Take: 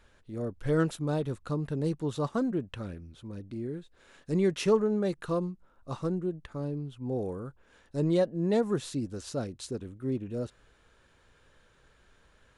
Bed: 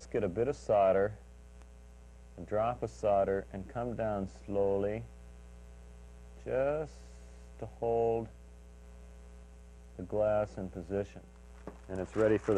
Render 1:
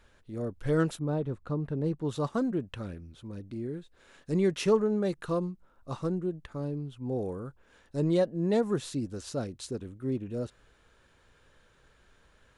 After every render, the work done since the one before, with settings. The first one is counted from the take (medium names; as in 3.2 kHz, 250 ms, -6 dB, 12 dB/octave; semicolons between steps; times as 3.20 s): 0.98–2.04 s: low-pass 1 kHz -> 1.8 kHz 6 dB/octave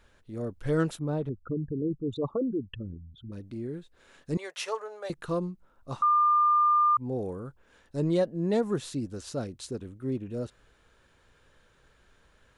1.29–3.32 s: resonances exaggerated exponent 3; 4.37–5.10 s: inverse Chebyshev high-pass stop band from 280 Hz; 6.02–6.97 s: bleep 1.2 kHz -19 dBFS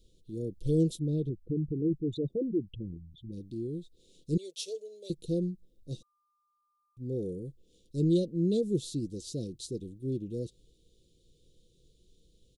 elliptic band-stop 440–3600 Hz, stop band 50 dB; comb 6 ms, depth 35%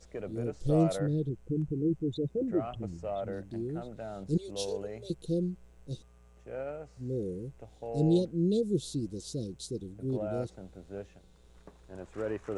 add bed -7 dB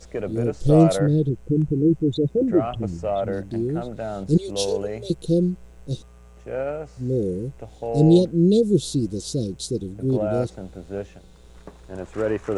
trim +11 dB